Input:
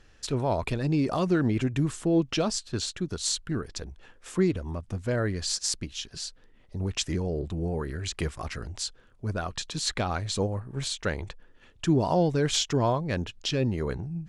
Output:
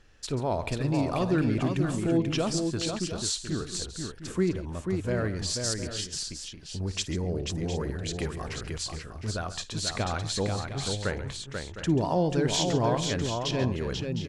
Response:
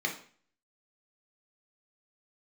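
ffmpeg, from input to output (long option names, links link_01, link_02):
-af "aecho=1:1:55|137|488|709|747:0.133|0.188|0.562|0.266|0.158,volume=-2dB"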